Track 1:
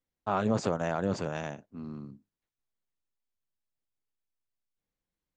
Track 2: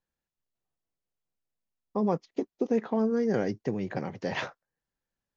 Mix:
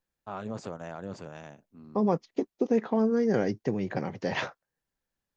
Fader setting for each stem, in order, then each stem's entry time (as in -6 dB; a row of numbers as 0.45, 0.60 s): -9.0, +1.5 dB; 0.00, 0.00 s